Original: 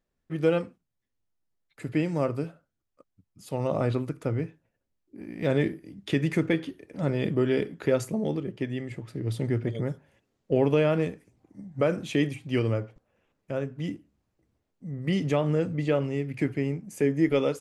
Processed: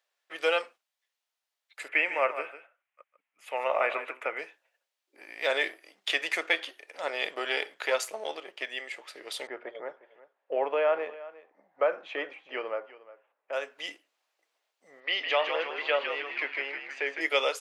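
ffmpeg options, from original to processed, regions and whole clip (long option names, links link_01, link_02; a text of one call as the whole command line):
ffmpeg -i in.wav -filter_complex "[0:a]asettb=1/sr,asplit=3[link_01][link_02][link_03];[link_01]atrim=end=1.884[link_04];[link_02]atrim=start=1.88:end=4.39,asetpts=PTS-STARTPTS,afade=type=in:duration=0.004:curve=qsin,afade=type=out:start_time=2.506:duration=0.004:curve=qsin,highshelf=frequency=3200:width_type=q:width=3:gain=-11.5,aecho=1:1:150:0.266,atrim=end_sample=110691[link_05];[link_03]atrim=start=4.386[link_06];[link_04][link_05]acrossfade=duration=0.004:curve1=hsin:curve2=qsin[link_07];[link_07][link_06]acrossfade=duration=0.004:curve1=qsin:curve2=hsin,asettb=1/sr,asplit=3[link_08][link_09][link_10];[link_08]atrim=end=5.694[link_11];[link_09]atrim=start=5.69:end=8.67,asetpts=PTS-STARTPTS,afade=type=in:duration=0.004:curve=qsin,afade=type=out:start_time=2.976:duration=0.004:curve=qsin,aeval=exprs='if(lt(val(0),0),0.708*val(0),val(0))':channel_layout=same,acompressor=mode=upward:threshold=-44dB:ratio=2.5:attack=3.2:release=140:knee=2.83:detection=peak[link_12];[link_10]atrim=start=8.666[link_13];[link_11][link_12]acrossfade=duration=0.004:curve1=hsin:curve2=qsin[link_14];[link_14][link_13]acrossfade=duration=0.004:curve1=qsin:curve2=hsin,asettb=1/sr,asplit=3[link_15][link_16][link_17];[link_15]atrim=end=9.474[link_18];[link_16]atrim=start=9.47:end=13.53,asetpts=PTS-STARTPTS,afade=type=in:duration=0.004:curve=qsin,afade=type=out:start_time=4.056:duration=0.004:curve=qsin,lowpass=1300,aecho=1:1:357:0.126,atrim=end_sample=179046[link_19];[link_17]atrim=start=13.526[link_20];[link_18][link_19]acrossfade=duration=0.004:curve1=hsin:curve2=qsin[link_21];[link_21][link_20]acrossfade=duration=0.004:curve1=qsin:curve2=hsin,asettb=1/sr,asplit=3[link_22][link_23][link_24];[link_22]atrim=end=15.004[link_25];[link_23]atrim=start=15:end=17.21,asetpts=PTS-STARTPTS,afade=type=in:duration=0.004:curve=qsin,afade=type=out:start_time=2.206:duration=0.004:curve=qsin,lowpass=frequency=4000:width=0.5412,lowpass=frequency=4000:width=1.3066,equalizer=frequency=99:width=0.58:gain=-11,asplit=9[link_26][link_27][link_28][link_29][link_30][link_31][link_32][link_33][link_34];[link_27]adelay=158,afreqshift=-74,volume=-5.5dB[link_35];[link_28]adelay=316,afreqshift=-148,volume=-10.2dB[link_36];[link_29]adelay=474,afreqshift=-222,volume=-15dB[link_37];[link_30]adelay=632,afreqshift=-296,volume=-19.7dB[link_38];[link_31]adelay=790,afreqshift=-370,volume=-24.4dB[link_39];[link_32]adelay=948,afreqshift=-444,volume=-29.2dB[link_40];[link_33]adelay=1106,afreqshift=-518,volume=-33.9dB[link_41];[link_34]adelay=1264,afreqshift=-592,volume=-38.6dB[link_42];[link_26][link_35][link_36][link_37][link_38][link_39][link_40][link_41][link_42]amix=inputs=9:normalize=0,atrim=end_sample=97461[link_43];[link_24]atrim=start=17.206[link_44];[link_25][link_43]acrossfade=duration=0.004:curve1=hsin:curve2=qsin[link_45];[link_45][link_44]acrossfade=duration=0.004:curve1=qsin:curve2=hsin,highpass=frequency=600:width=0.5412,highpass=frequency=600:width=1.3066,equalizer=frequency=3200:width=0.69:gain=7,volume=3.5dB" out.wav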